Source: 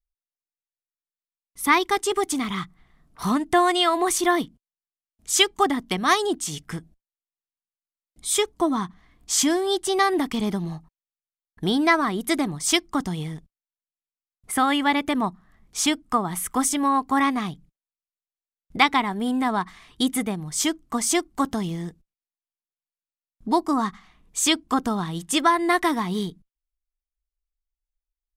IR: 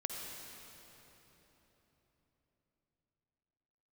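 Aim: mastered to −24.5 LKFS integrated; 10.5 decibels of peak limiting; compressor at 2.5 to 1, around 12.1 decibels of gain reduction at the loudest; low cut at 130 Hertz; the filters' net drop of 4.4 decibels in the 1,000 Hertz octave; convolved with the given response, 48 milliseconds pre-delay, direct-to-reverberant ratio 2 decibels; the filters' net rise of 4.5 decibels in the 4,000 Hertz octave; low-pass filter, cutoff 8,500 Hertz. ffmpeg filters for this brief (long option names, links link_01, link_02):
-filter_complex "[0:a]highpass=130,lowpass=8500,equalizer=frequency=1000:width_type=o:gain=-6,equalizer=frequency=4000:width_type=o:gain=6.5,acompressor=threshold=-28dB:ratio=2.5,alimiter=limit=-21.5dB:level=0:latency=1,asplit=2[link_01][link_02];[1:a]atrim=start_sample=2205,adelay=48[link_03];[link_02][link_03]afir=irnorm=-1:irlink=0,volume=-3dB[link_04];[link_01][link_04]amix=inputs=2:normalize=0,volume=5.5dB"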